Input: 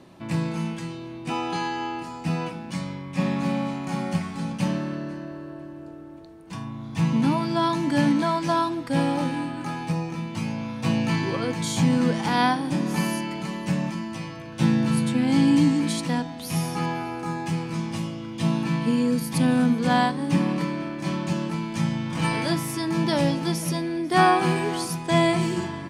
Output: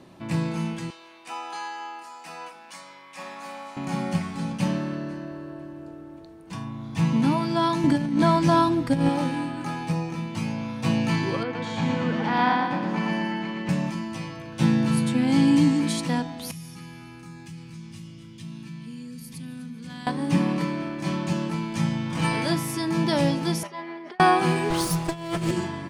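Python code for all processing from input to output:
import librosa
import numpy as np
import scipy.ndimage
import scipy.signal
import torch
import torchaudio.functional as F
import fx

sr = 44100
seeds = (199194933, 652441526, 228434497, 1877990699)

y = fx.chain(x, sr, fx.highpass(hz=910.0, slope=12),
    fx.dynamic_eq(hz=3000.0, q=0.73, threshold_db=-48.0, ratio=4.0, max_db=-7), at=(0.9, 3.77))
y = fx.chain(y, sr, fx.low_shelf(hz=240.0, db=10.5),
    fx.over_compress(threshold_db=-19.0, ratio=-0.5), at=(7.84, 9.09))
y = fx.chain(y, sr, fx.lowpass(hz=2600.0, slope=12),
    fx.low_shelf(hz=370.0, db=-8.0),
    fx.echo_feedback(ms=118, feedback_pct=51, wet_db=-3), at=(11.43, 13.69))
y = fx.chain(y, sr, fx.tone_stack(knobs='6-0-2'),
    fx.echo_single(ms=250, db=-15.0),
    fx.env_flatten(amount_pct=50), at=(16.51, 20.07))
y = fx.chain(y, sr, fx.over_compress(threshold_db=-29.0, ratio=-0.5),
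    fx.bandpass_edges(low_hz=580.0, high_hz=2300.0),
    fx.comb(ms=5.0, depth=0.89), at=(23.63, 24.2))
y = fx.chain(y, sr, fx.lower_of_two(delay_ms=6.2),
    fx.low_shelf(hz=120.0, db=6.0),
    fx.over_compress(threshold_db=-25.0, ratio=-0.5), at=(24.7, 25.51))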